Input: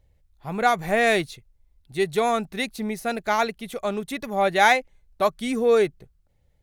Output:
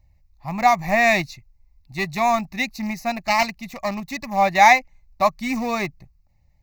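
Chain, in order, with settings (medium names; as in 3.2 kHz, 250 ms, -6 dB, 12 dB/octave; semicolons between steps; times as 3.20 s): 3.21–4.27 s: self-modulated delay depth 0.21 ms; in parallel at -10.5 dB: small samples zeroed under -22 dBFS; on the sum: static phaser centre 2.2 kHz, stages 8; trim +4.5 dB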